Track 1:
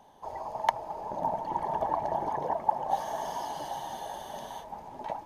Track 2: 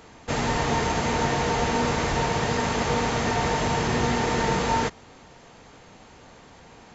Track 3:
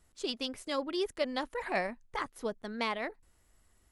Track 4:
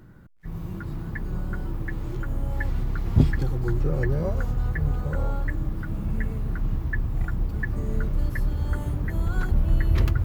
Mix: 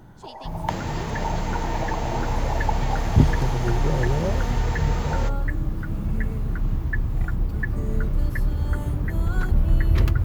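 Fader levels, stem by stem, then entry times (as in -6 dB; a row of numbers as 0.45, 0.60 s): -1.5, -8.5, -9.5, +2.0 dB; 0.00, 0.40, 0.00, 0.00 s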